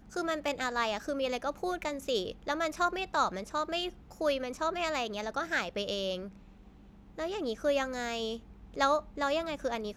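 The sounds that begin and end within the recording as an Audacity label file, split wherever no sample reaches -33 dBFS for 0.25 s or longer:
4.210000	6.230000	sound
7.190000	8.360000	sound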